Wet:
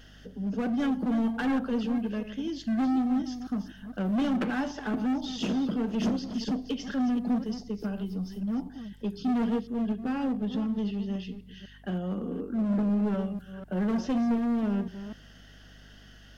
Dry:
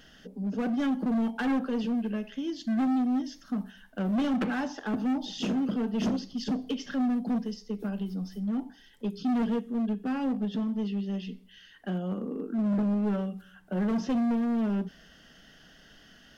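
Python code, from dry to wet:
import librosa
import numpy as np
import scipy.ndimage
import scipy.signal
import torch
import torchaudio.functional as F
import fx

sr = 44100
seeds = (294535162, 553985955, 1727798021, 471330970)

y = fx.reverse_delay(x, sr, ms=248, wet_db=-11.0)
y = fx.add_hum(y, sr, base_hz=50, snr_db=24)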